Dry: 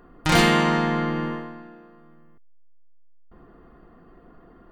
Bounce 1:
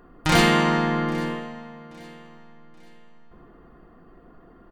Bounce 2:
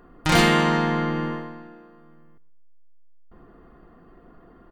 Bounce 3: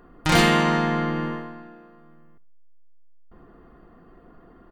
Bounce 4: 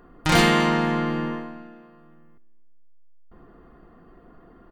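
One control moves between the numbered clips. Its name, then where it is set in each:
repeating echo, delay time: 827, 122, 70, 248 milliseconds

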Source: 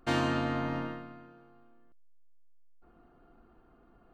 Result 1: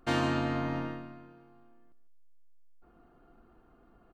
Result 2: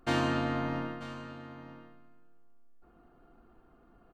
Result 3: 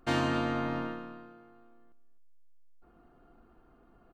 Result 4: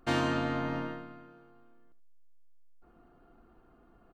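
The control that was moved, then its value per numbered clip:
single-tap delay, delay time: 151, 938, 257, 75 milliseconds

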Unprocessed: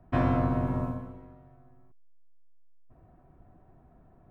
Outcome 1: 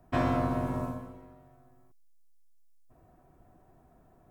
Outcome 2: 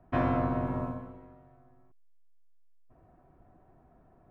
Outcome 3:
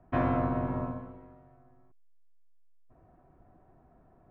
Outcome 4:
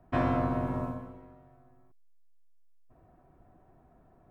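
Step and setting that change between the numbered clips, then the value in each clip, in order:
bass and treble, treble: +12, −7, −15, +1 decibels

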